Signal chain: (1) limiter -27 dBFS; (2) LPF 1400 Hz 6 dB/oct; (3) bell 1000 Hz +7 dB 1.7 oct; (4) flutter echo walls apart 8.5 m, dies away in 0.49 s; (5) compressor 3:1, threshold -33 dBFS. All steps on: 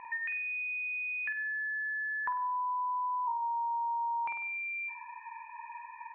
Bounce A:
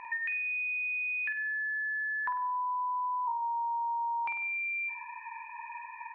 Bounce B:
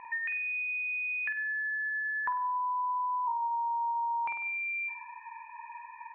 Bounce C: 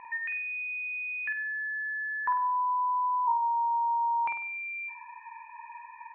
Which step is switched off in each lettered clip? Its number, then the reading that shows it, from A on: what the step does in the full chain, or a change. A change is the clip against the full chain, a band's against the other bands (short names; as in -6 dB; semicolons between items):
2, loudness change +1.5 LU; 1, mean gain reduction 4.0 dB; 5, momentary loudness spread change +6 LU